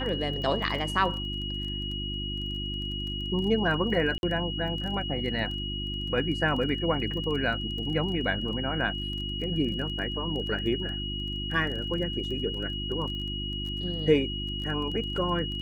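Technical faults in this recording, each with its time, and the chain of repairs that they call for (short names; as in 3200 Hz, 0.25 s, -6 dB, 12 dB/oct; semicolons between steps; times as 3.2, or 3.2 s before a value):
crackle 21/s -35 dBFS
hum 50 Hz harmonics 7 -35 dBFS
tone 2900 Hz -34 dBFS
4.18–4.23 gap 51 ms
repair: de-click; de-hum 50 Hz, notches 7; notch 2900 Hz, Q 30; interpolate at 4.18, 51 ms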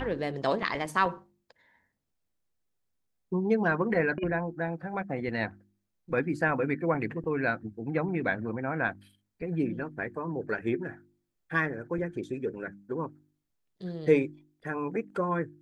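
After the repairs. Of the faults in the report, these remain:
none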